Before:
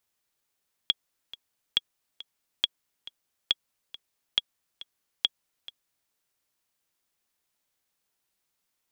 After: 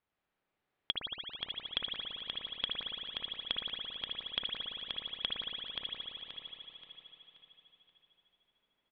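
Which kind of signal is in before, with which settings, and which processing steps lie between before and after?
click track 138 BPM, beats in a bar 2, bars 6, 3,330 Hz, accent 18.5 dB −8.5 dBFS
high-frequency loss of the air 410 metres
on a send: repeating echo 529 ms, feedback 38%, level −4.5 dB
on the sum: spring reverb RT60 3.3 s, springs 56 ms, chirp 30 ms, DRR −3 dB

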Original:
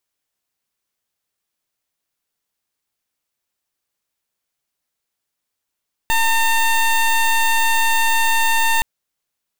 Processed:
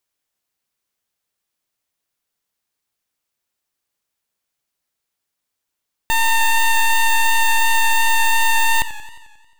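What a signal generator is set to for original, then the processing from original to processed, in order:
pulse wave 906 Hz, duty 17% −15.5 dBFS 2.72 s
feedback echo with a swinging delay time 89 ms, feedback 64%, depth 90 cents, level −15.5 dB

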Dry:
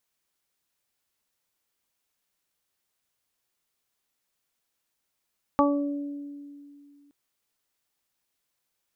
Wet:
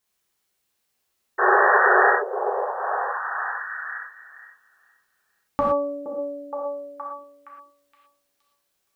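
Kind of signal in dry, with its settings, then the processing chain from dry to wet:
harmonic partials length 1.52 s, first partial 286 Hz, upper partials −1.5/0.5/0.5 dB, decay 2.52 s, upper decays 1.07/0.28/0.36 s, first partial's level −20 dB
sound drawn into the spectrogram noise, 0:01.38–0:02.10, 370–1,900 Hz −22 dBFS
on a send: echo through a band-pass that steps 469 ms, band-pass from 430 Hz, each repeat 0.7 octaves, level −3.5 dB
on the sum: reverb whose tail is shaped and stops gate 140 ms flat, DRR −4 dB

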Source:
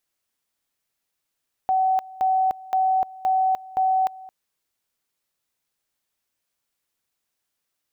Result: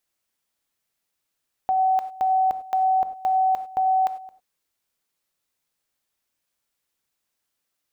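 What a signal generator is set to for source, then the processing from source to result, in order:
tone at two levels in turn 756 Hz −17 dBFS, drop 20.5 dB, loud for 0.30 s, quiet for 0.22 s, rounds 5
reverb whose tail is shaped and stops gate 120 ms flat, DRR 10.5 dB

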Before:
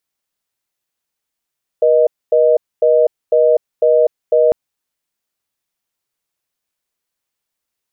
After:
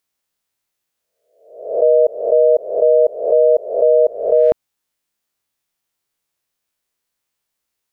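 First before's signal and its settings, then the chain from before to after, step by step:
call progress tone reorder tone, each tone −11 dBFS 2.70 s
peak hold with a rise ahead of every peak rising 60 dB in 0.62 s

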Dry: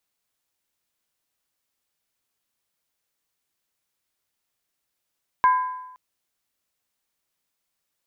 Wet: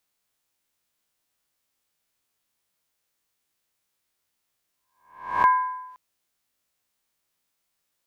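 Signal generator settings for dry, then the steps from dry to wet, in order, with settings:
struck skin length 0.52 s, lowest mode 1,010 Hz, modes 3, decay 0.95 s, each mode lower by 11 dB, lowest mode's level −12 dB
peak hold with a rise ahead of every peak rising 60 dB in 0.53 s

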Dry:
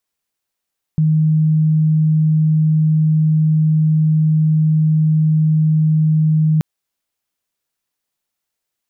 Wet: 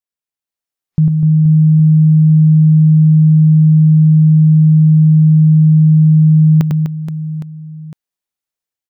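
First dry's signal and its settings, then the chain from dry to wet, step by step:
tone sine 156 Hz −10.5 dBFS 5.63 s
noise reduction from a noise print of the clip's start 14 dB
automatic gain control gain up to 5 dB
on a send: reverse bouncing-ball delay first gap 100 ms, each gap 1.5×, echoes 5

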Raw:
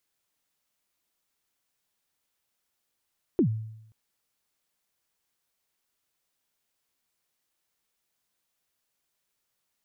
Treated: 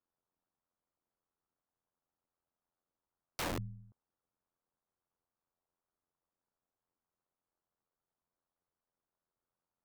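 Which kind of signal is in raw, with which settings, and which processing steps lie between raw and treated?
synth kick length 0.53 s, from 400 Hz, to 110 Hz, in 90 ms, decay 0.81 s, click off, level −16.5 dB
low-pass filter 1,300 Hz 24 dB per octave
amplitude modulation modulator 87 Hz, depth 70%
wrap-around overflow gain 31.5 dB

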